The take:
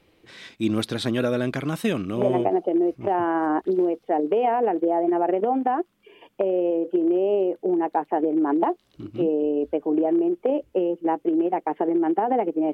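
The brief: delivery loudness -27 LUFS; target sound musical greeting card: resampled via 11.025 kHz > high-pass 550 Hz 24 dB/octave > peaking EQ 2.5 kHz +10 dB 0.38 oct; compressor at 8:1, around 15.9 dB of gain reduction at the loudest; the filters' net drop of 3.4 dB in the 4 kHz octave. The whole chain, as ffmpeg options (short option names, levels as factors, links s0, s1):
-af "equalizer=f=4000:t=o:g=-6.5,acompressor=threshold=0.0178:ratio=8,aresample=11025,aresample=44100,highpass=f=550:w=0.5412,highpass=f=550:w=1.3066,equalizer=f=2500:t=o:w=0.38:g=10,volume=7.08"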